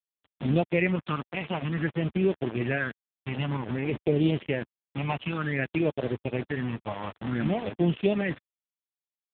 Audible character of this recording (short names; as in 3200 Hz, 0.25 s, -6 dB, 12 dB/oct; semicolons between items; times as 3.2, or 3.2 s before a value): phasing stages 6, 0.54 Hz, lowest notch 410–1800 Hz; a quantiser's noise floor 6-bit, dither none; AMR-NB